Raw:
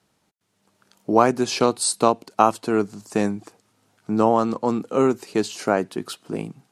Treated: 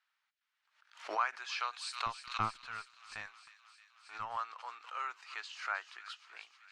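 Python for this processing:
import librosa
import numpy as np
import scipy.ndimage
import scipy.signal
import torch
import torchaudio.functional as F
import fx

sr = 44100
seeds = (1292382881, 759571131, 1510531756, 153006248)

y = scipy.signal.sosfilt(scipy.signal.butter(4, 1400.0, 'highpass', fs=sr, output='sos'), x)
y = fx.tube_stage(y, sr, drive_db=17.0, bias=0.6, at=(2.06, 4.37))
y = fx.spacing_loss(y, sr, db_at_10k=33)
y = fx.echo_wet_highpass(y, sr, ms=312, feedback_pct=73, hz=2500.0, wet_db=-11.0)
y = fx.pre_swell(y, sr, db_per_s=130.0)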